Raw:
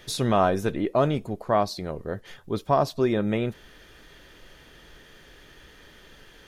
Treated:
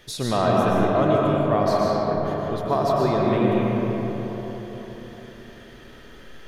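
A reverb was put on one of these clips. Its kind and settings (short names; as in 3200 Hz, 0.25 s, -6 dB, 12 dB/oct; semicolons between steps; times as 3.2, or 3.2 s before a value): digital reverb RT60 4.6 s, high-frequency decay 0.4×, pre-delay 80 ms, DRR -4.5 dB; gain -2 dB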